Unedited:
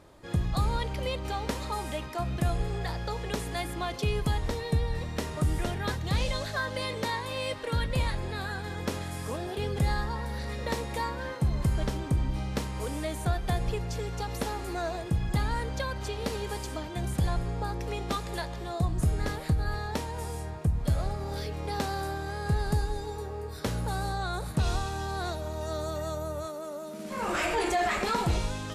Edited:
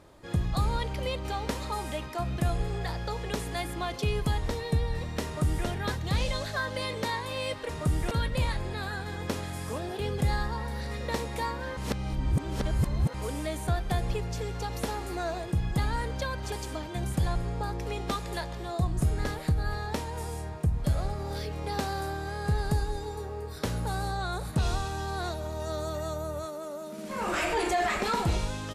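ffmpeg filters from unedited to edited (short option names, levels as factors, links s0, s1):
-filter_complex "[0:a]asplit=6[s0][s1][s2][s3][s4][s5];[s0]atrim=end=7.692[s6];[s1]atrim=start=5.248:end=5.672[s7];[s2]atrim=start=7.688:end=11.352[s8];[s3]atrim=start=11.348:end=12.722,asetpts=PTS-STARTPTS,areverse[s9];[s4]atrim=start=12.718:end=16.102[s10];[s5]atrim=start=16.528[s11];[s6][s7]acrossfade=d=0.004:c1=hsin:c2=hsin[s12];[s12][s8]acrossfade=d=0.004:c1=hsin:c2=hsin[s13];[s13][s9]acrossfade=d=0.004:c1=hsin:c2=hsin[s14];[s14][s10]acrossfade=d=0.004:c1=hsin:c2=hsin[s15];[s15][s11]acrossfade=d=0.004:c1=hsin:c2=hsin"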